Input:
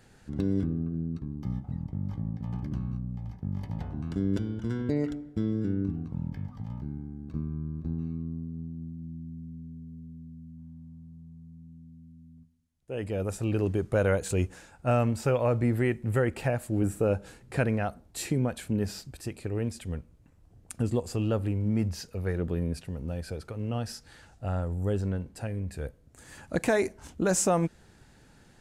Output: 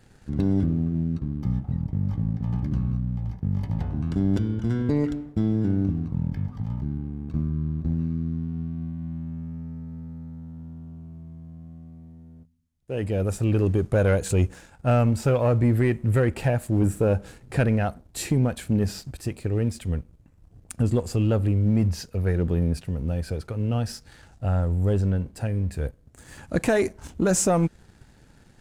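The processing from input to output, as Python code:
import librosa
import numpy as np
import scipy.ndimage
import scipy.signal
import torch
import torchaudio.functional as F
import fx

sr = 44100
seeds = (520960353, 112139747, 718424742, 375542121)

y = fx.low_shelf(x, sr, hz=210.0, db=5.5)
y = fx.leveller(y, sr, passes=1)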